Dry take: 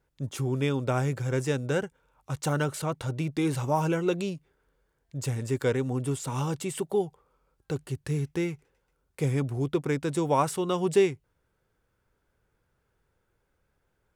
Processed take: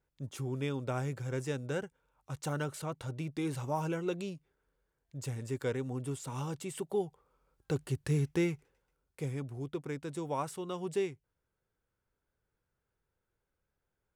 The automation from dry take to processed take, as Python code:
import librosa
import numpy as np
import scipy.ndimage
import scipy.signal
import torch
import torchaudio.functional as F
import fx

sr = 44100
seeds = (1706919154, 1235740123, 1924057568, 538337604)

y = fx.gain(x, sr, db=fx.line((6.65, -8.0), (7.82, -1.0), (8.51, -1.0), (9.36, -11.0)))